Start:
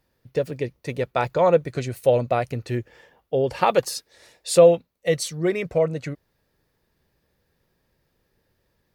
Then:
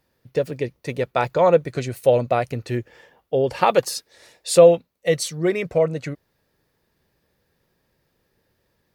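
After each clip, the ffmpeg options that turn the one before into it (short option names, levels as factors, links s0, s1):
-af "lowshelf=f=62:g=-7.5,volume=1.26"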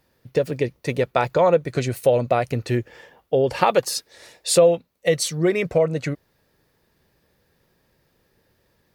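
-af "acompressor=threshold=0.0891:ratio=2,volume=1.58"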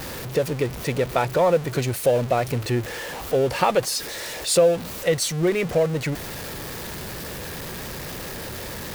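-af "aeval=exprs='val(0)+0.5*0.0596*sgn(val(0))':c=same,volume=0.708"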